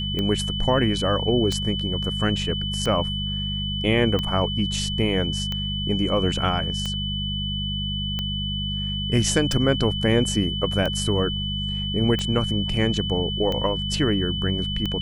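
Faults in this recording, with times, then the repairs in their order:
hum 50 Hz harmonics 4 -29 dBFS
tick 45 rpm -14 dBFS
whine 3 kHz -28 dBFS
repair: de-click; de-hum 50 Hz, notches 4; band-stop 3 kHz, Q 30

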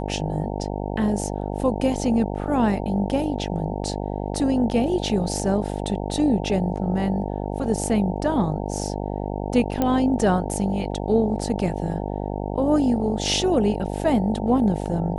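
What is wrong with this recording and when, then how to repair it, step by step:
buzz 50 Hz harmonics 18 -28 dBFS
9.82 s: pop -9 dBFS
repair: de-click; de-hum 50 Hz, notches 18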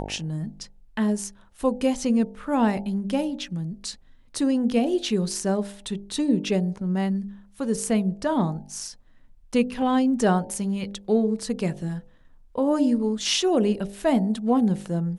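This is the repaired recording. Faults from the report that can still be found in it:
nothing left

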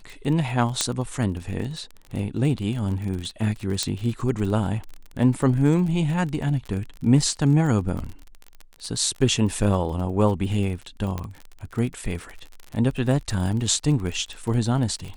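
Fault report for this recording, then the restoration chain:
crackle 35 per s -30 dBFS
0.81 s: pop -6 dBFS
3.83 s: pop -9 dBFS
11.18 s: pop -16 dBFS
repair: de-click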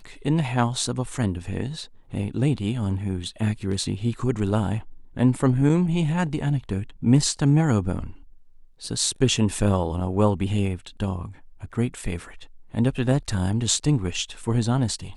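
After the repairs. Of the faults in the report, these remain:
3.83 s: pop

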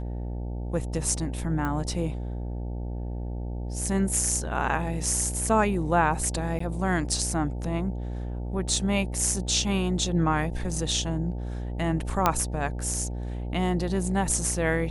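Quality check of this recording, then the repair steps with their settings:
buzz 60 Hz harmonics 15 -32 dBFS
1.65 s: pop -18 dBFS
6.59–6.60 s: dropout 14 ms
12.26 s: pop -6 dBFS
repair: de-click; de-hum 60 Hz, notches 15; interpolate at 6.59 s, 14 ms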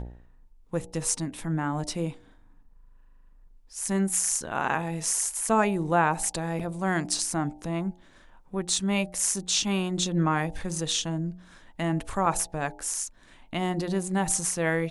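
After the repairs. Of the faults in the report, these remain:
12.26 s: pop

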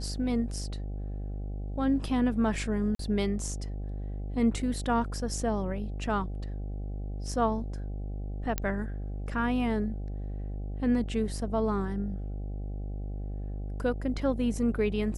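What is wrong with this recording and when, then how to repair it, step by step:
buzz 50 Hz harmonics 16 -35 dBFS
2.95–2.99 s: dropout 43 ms
8.58 s: pop -13 dBFS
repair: de-click; de-hum 50 Hz, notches 16; interpolate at 2.95 s, 43 ms

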